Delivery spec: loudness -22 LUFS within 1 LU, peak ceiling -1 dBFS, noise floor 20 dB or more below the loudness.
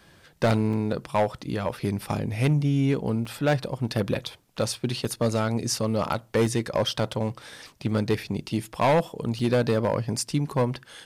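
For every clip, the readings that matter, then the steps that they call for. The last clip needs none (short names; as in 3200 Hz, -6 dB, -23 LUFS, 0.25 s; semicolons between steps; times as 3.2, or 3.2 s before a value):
clipped 1.1%; flat tops at -16.0 dBFS; dropouts 5; longest dropout 4.5 ms; loudness -26.5 LUFS; peak -16.0 dBFS; loudness target -22.0 LUFS
-> clip repair -16 dBFS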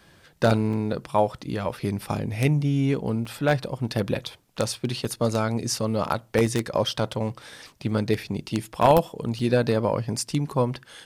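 clipped 0.0%; dropouts 5; longest dropout 4.5 ms
-> interpolate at 0.73/3.25/5.05/6.46/9.39, 4.5 ms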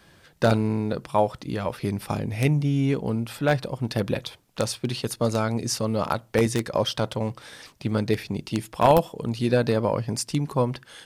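dropouts 0; loudness -25.5 LUFS; peak -7.0 dBFS; loudness target -22.0 LUFS
-> gain +3.5 dB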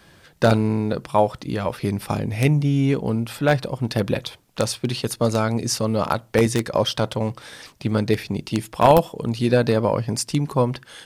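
loudness -22.0 LUFS; peak -3.5 dBFS; noise floor -53 dBFS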